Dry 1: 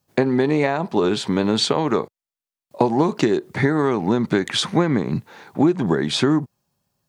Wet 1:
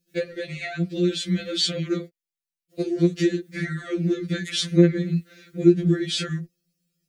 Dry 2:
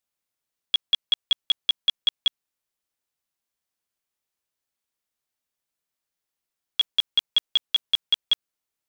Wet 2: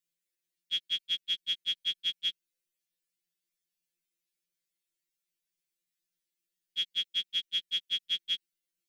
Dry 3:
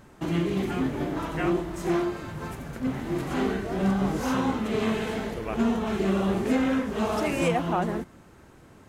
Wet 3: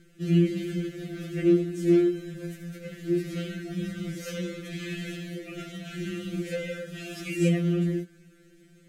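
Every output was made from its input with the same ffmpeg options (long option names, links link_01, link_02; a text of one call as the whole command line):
ffmpeg -i in.wav -af "asuperstop=centerf=910:order=4:qfactor=0.71,afftfilt=real='re*2.83*eq(mod(b,8),0)':imag='im*2.83*eq(mod(b,8),0)':win_size=2048:overlap=0.75" out.wav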